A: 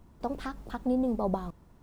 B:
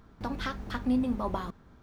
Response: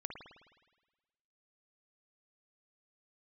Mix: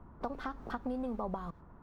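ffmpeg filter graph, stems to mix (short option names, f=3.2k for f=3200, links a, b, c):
-filter_complex "[0:a]acontrast=50,lowpass=f=1.3k:t=q:w=2,volume=-4dB,asplit=2[a][b];[1:a]acompressor=threshold=-39dB:ratio=1.5,volume=-7.5dB[c];[b]apad=whole_len=80406[d];[c][d]sidechaingate=range=-33dB:threshold=-45dB:ratio=16:detection=peak[e];[a][e]amix=inputs=2:normalize=0,acrossover=split=82|1400[f][g][h];[f]acompressor=threshold=-47dB:ratio=4[i];[g]acompressor=threshold=-37dB:ratio=4[j];[h]acompressor=threshold=-48dB:ratio=4[k];[i][j][k]amix=inputs=3:normalize=0"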